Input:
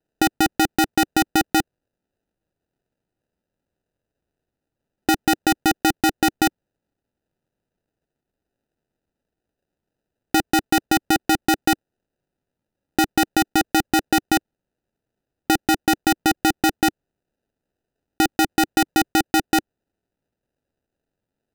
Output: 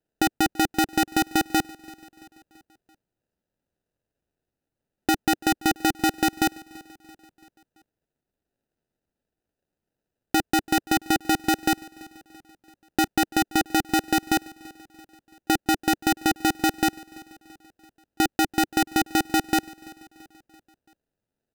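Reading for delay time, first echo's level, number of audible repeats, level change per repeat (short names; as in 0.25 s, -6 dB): 0.336 s, -22.0 dB, 3, -5.5 dB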